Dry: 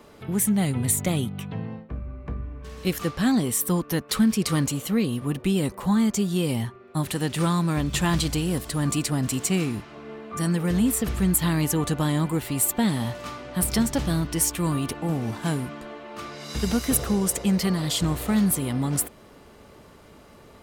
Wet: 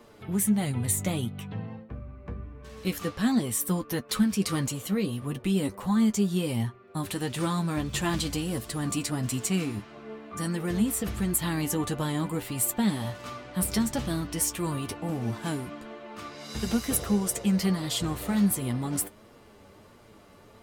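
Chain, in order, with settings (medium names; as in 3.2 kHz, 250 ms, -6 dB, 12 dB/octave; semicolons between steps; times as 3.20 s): flange 1.5 Hz, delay 8.3 ms, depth 2.4 ms, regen +37%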